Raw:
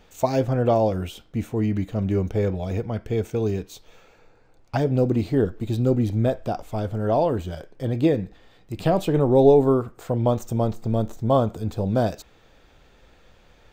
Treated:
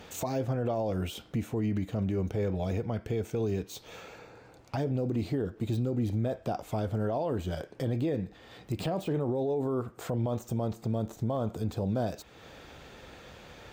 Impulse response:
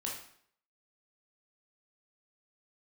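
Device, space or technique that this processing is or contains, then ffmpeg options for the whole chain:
podcast mastering chain: -af "highpass=74,deesser=0.95,acompressor=threshold=0.00708:ratio=2,alimiter=level_in=2.11:limit=0.0631:level=0:latency=1:release=27,volume=0.473,volume=2.51" -ar 48000 -c:a libmp3lame -b:a 96k

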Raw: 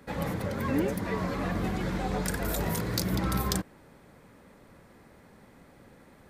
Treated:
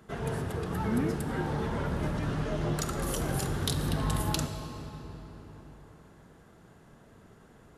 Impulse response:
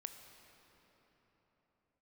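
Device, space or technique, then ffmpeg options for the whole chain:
slowed and reverbed: -filter_complex "[0:a]asetrate=35721,aresample=44100[s0];[1:a]atrim=start_sample=2205[s1];[s0][s1]afir=irnorm=-1:irlink=0,volume=1.41"

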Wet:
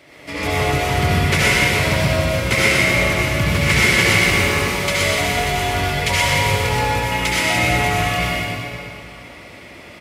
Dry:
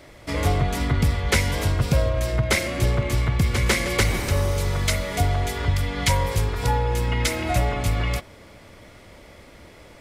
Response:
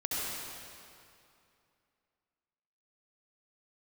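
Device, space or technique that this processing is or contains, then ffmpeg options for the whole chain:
PA in a hall: -filter_complex "[0:a]highpass=110,equalizer=f=2500:t=o:w=0.84:g=7.5,aecho=1:1:124:0.562[s0];[1:a]atrim=start_sample=2205[s1];[s0][s1]afir=irnorm=-1:irlink=0,volume=0.891"

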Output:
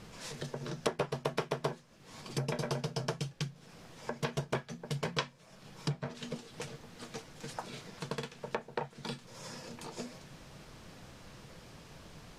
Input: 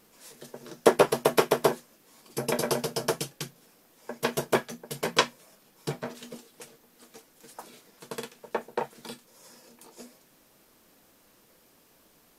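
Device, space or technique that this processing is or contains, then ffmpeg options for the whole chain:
jukebox: -af "lowpass=5800,lowshelf=f=190:t=q:w=1.5:g=9.5,acompressor=threshold=0.00447:ratio=3,volume=2.82"

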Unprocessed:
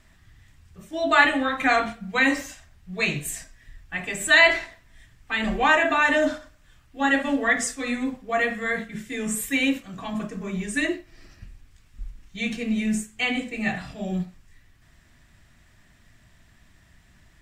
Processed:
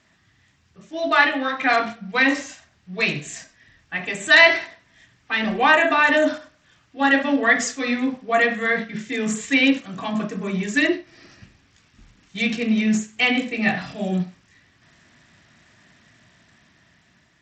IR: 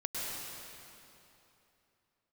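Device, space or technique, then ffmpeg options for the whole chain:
Bluetooth headset: -filter_complex "[0:a]asettb=1/sr,asplit=3[s0][s1][s2];[s0]atrim=end=1.124[s3];[s1]atrim=start=1.12:end=1.74,asetpts=PTS-STARTPTS,afade=t=in:d=0.004:c=qsin,afade=t=out:st=0.616:d=0.004:c=qsin,highpass=f=210:p=1[s4];[s2]atrim=start=1.736[s5];[s3][s4]acrossfade=d=0.004:c1=hsin:c2=qsin[s6];[s6][s5]acrossfade=d=0.004:c1=qsin:c2=hsin,highpass=150,dynaudnorm=f=590:g=5:m=2,aresample=16000,aresample=44100" -ar 32000 -c:a sbc -b:a 64k

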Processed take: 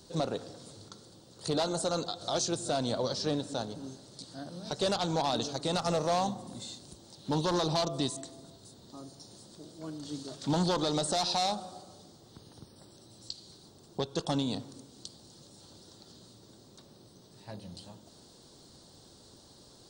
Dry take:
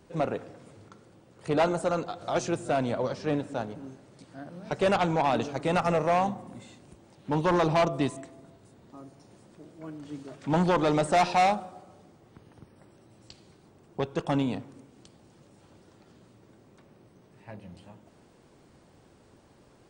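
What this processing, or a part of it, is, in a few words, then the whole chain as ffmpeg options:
over-bright horn tweeter: -af "highshelf=f=3100:t=q:w=3:g=9.5,alimiter=limit=0.1:level=0:latency=1:release=256"

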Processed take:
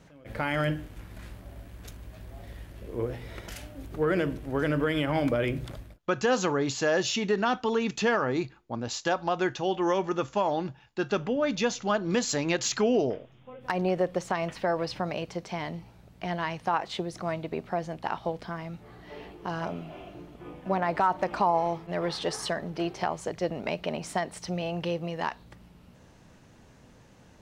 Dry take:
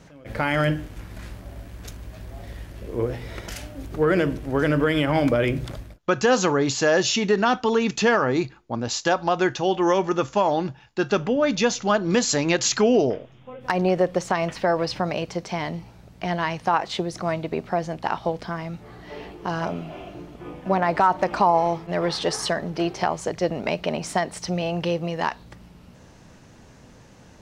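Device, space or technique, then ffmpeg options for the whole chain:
exciter from parts: -filter_complex "[0:a]asplit=2[s0][s1];[s1]highpass=4900,asoftclip=type=tanh:threshold=0.0794,highpass=f=3300:w=0.5412,highpass=f=3300:w=1.3066,volume=0.299[s2];[s0][s2]amix=inputs=2:normalize=0,volume=0.501"

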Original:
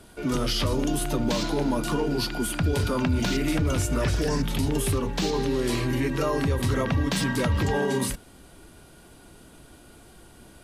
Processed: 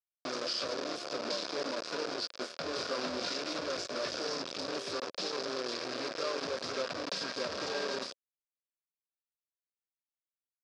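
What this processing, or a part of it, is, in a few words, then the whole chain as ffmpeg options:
hand-held game console: -filter_complex "[0:a]acrusher=bits=3:mix=0:aa=0.000001,highpass=430,equalizer=f=540:t=q:w=4:g=6,equalizer=f=850:t=q:w=4:g=-9,equalizer=f=2000:t=q:w=4:g=-8,equalizer=f=3000:t=q:w=4:g=-6,equalizer=f=5000:t=q:w=4:g=8,lowpass=f=5400:w=0.5412,lowpass=f=5400:w=1.3066,asettb=1/sr,asplit=3[s0][s1][s2];[s0]atrim=end=2.394[s3];[s1]atrim=start=2.39:end=3.41,asetpts=PTS-STARTPTS,afade=t=in:d=0.004:c=qsin,afade=t=out:st=1.016:d=0.004:c=qsin,asplit=2[s4][s5];[s5]adelay=24,volume=0.501[s6];[s4][s6]amix=inputs=2:normalize=0,atrim=end_sample=44982[s7];[s2]atrim=start=3.406[s8];[s3][s7]acrossfade=d=0.004:c1=hsin:c2=qsin[s9];[s9][s8]acrossfade=d=0.004:c1=qsin:c2=hsin,volume=0.355"

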